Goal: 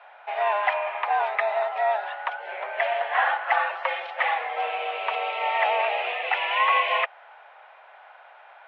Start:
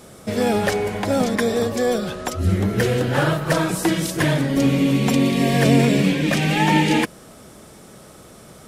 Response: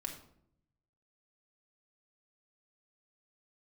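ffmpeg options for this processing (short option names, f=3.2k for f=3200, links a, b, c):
-af "highpass=f=490:t=q:w=0.5412,highpass=f=490:t=q:w=1.307,lowpass=f=2.7k:t=q:w=0.5176,lowpass=f=2.7k:t=q:w=0.7071,lowpass=f=2.7k:t=q:w=1.932,afreqshift=200"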